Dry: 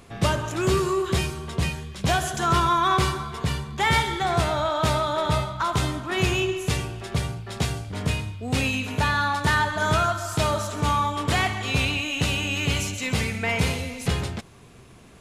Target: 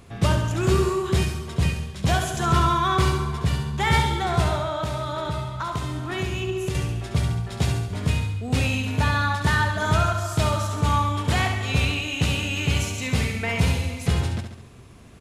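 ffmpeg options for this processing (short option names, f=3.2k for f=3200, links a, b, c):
-filter_complex "[0:a]equalizer=f=78:w=0.48:g=6,asettb=1/sr,asplit=3[a][b][c];[a]atrim=end=4.554[d];[b]atrim=start=4.55:end=6.75,asetpts=PTS-STARTPTS,afade=t=in:d=0.004:c=qsin,afade=t=out:st=2.196:d=0.004:c=qsin,acompressor=threshold=-24dB:ratio=4[e];[c]atrim=start=6.746[f];[d][e]acrossfade=d=0.004:c1=hsin:c2=qsin[g];[g][f]acrossfade=d=0.004:c1=qsin:c2=hsin,aecho=1:1:69|138|207|276|345|414:0.447|0.237|0.125|0.0665|0.0352|0.0187,volume=-2dB"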